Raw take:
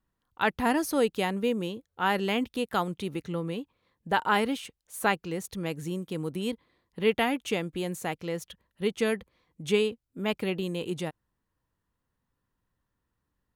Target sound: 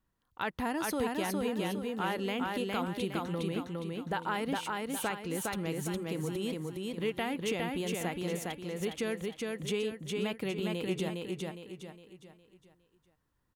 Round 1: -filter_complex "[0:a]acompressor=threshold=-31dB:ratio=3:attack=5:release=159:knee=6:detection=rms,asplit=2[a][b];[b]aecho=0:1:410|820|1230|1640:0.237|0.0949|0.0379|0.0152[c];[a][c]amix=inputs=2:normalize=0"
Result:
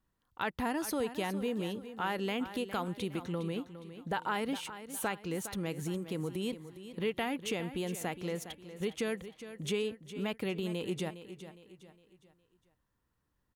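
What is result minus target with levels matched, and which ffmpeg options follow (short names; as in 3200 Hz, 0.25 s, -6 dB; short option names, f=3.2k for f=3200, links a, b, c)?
echo-to-direct -10 dB
-filter_complex "[0:a]acompressor=threshold=-31dB:ratio=3:attack=5:release=159:knee=6:detection=rms,asplit=2[a][b];[b]aecho=0:1:410|820|1230|1640|2050:0.75|0.3|0.12|0.048|0.0192[c];[a][c]amix=inputs=2:normalize=0"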